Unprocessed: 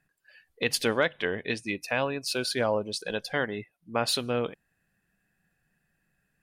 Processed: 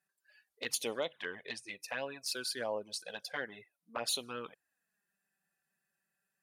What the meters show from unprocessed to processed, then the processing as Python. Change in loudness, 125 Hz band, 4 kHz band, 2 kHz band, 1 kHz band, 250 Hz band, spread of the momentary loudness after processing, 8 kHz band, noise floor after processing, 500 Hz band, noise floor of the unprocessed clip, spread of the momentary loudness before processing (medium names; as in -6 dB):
-9.5 dB, -20.0 dB, -7.0 dB, -10.5 dB, -11.0 dB, -15.5 dB, 10 LU, -3.5 dB, under -85 dBFS, -11.5 dB, -77 dBFS, 6 LU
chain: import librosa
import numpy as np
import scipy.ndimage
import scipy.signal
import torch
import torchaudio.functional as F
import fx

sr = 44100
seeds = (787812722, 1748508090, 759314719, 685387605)

y = fx.highpass(x, sr, hz=1200.0, slope=6)
y = fx.peak_eq(y, sr, hz=2500.0, db=-7.0, octaves=1.5)
y = fx.env_flanger(y, sr, rest_ms=5.2, full_db=-29.0)